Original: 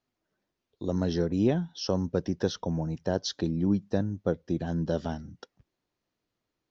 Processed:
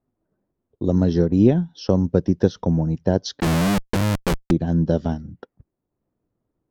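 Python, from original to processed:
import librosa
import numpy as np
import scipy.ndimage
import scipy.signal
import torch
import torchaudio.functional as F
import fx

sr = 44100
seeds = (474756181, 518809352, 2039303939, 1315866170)

y = fx.transient(x, sr, attack_db=2, sustain_db=-5)
y = fx.low_shelf(y, sr, hz=500.0, db=9.5)
y = fx.schmitt(y, sr, flips_db=-26.0, at=(3.4, 4.51))
y = fx.env_lowpass(y, sr, base_hz=1100.0, full_db=-20.0)
y = F.gain(torch.from_numpy(y), 2.0).numpy()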